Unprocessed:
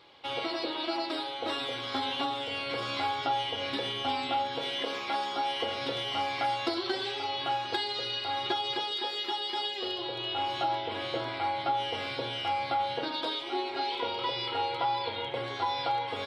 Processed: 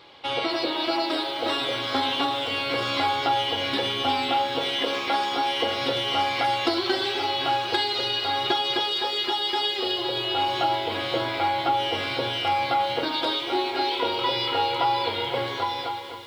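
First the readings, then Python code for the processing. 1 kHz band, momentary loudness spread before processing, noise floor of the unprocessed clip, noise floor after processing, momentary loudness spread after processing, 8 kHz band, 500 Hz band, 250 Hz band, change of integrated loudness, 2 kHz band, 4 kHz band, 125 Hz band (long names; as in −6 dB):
+6.0 dB, 3 LU, −37 dBFS, −31 dBFS, 3 LU, +8.0 dB, +7.0 dB, +7.5 dB, +7.0 dB, +7.5 dB, +7.5 dB, +6.5 dB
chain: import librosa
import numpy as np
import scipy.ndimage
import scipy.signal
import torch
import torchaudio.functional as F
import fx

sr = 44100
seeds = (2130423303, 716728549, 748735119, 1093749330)

y = fx.fade_out_tail(x, sr, length_s=0.89)
y = fx.echo_crushed(y, sr, ms=257, feedback_pct=80, bits=9, wet_db=-12.5)
y = y * 10.0 ** (7.0 / 20.0)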